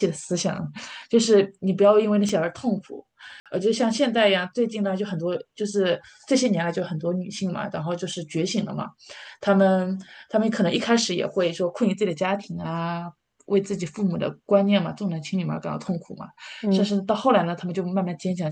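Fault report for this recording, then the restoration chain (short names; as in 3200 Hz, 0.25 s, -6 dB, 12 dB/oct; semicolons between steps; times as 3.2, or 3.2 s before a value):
2.29 gap 3 ms
3.4–3.46 gap 57 ms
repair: interpolate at 2.29, 3 ms; interpolate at 3.4, 57 ms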